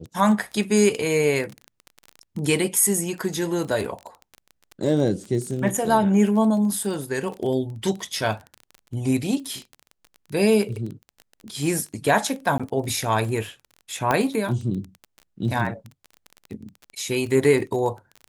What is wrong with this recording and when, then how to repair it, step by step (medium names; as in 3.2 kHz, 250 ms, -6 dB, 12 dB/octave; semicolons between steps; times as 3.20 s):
crackle 22 per s -29 dBFS
12.58–12.60 s: dropout 16 ms
14.11 s: pop -8 dBFS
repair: de-click; interpolate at 12.58 s, 16 ms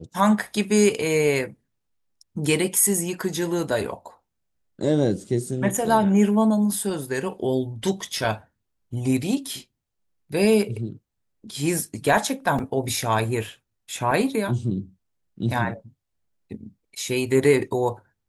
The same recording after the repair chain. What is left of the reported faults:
nothing left